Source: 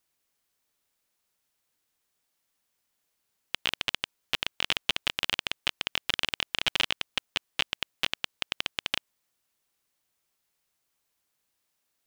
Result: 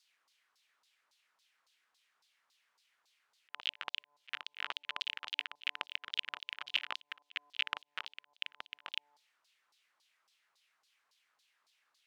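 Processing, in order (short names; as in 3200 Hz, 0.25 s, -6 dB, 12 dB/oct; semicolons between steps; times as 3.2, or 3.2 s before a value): pre-echo 58 ms -13 dB; limiter -13 dBFS, peak gain reduction 8.5 dB; de-hum 146.1 Hz, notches 7; LFO band-pass saw down 3.6 Hz 930–4700 Hz; auto swell 0.258 s; gain +13.5 dB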